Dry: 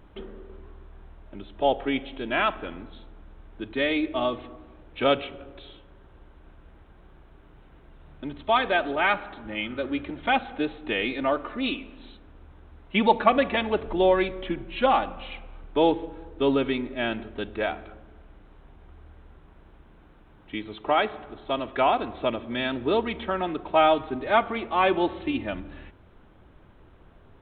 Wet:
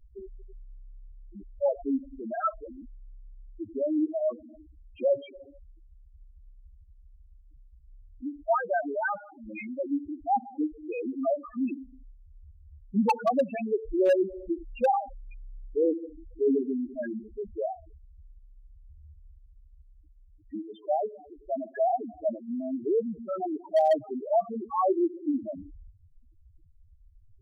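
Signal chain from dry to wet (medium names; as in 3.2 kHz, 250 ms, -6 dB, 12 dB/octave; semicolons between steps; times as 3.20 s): loudest bins only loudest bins 2; wavefolder -17.5 dBFS; trim +1.5 dB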